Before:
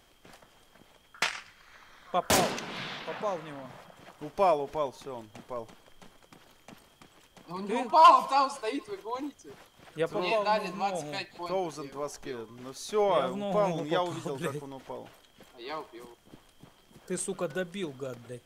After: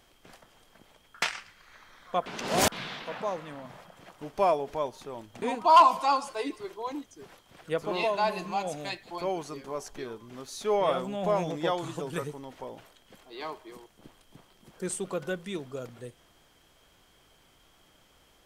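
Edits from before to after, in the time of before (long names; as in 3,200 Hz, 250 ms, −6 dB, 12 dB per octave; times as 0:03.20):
0:02.26–0:02.72: reverse
0:05.42–0:07.70: remove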